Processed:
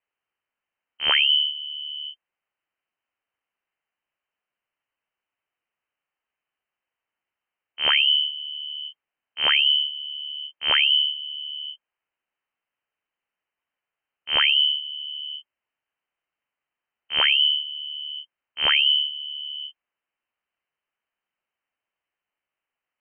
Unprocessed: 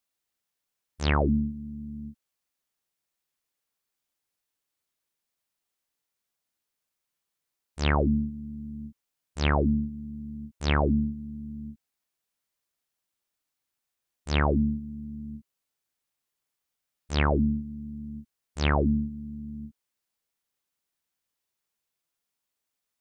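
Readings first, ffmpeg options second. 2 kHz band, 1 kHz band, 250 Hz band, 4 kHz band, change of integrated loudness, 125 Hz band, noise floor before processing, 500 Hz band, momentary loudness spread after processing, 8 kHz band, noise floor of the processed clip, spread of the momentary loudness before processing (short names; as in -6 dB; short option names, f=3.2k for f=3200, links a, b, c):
+10.0 dB, -1.5 dB, under -25 dB, +23.5 dB, +8.0 dB, under -25 dB, -85 dBFS, -10.0 dB, 17 LU, n/a, under -85 dBFS, 18 LU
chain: -af "highpass=61,lowpass=f=2.7k:t=q:w=0.5098,lowpass=f=2.7k:t=q:w=0.6013,lowpass=f=2.7k:t=q:w=0.9,lowpass=f=2.7k:t=q:w=2.563,afreqshift=-3200,volume=4.5dB"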